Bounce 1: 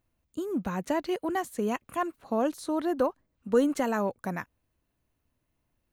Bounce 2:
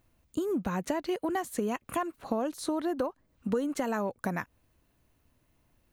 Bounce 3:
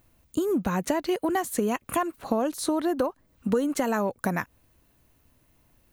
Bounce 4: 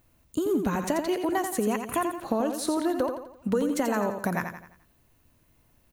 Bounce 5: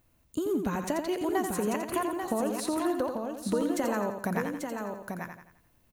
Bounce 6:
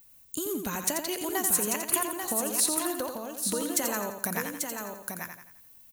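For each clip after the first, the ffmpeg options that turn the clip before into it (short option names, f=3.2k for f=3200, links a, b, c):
-af "acompressor=threshold=-36dB:ratio=6,volume=8dB"
-af "highshelf=f=8.5k:g=6,volume=5dB"
-af "aecho=1:1:86|172|258|344|430:0.447|0.192|0.0826|0.0355|0.0153,volume=-1.5dB"
-af "aecho=1:1:840:0.531,volume=-3.5dB"
-af "crystalizer=i=7.5:c=0,volume=-5dB"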